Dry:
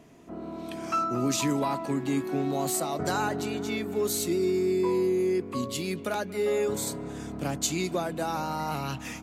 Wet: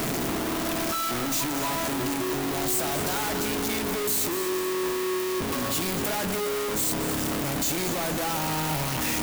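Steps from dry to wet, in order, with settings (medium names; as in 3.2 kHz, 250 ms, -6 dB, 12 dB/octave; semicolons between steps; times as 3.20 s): one-bit comparator; treble shelf 11 kHz +9 dB; two-band feedback delay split 550 Hz, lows 83 ms, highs 236 ms, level -10 dB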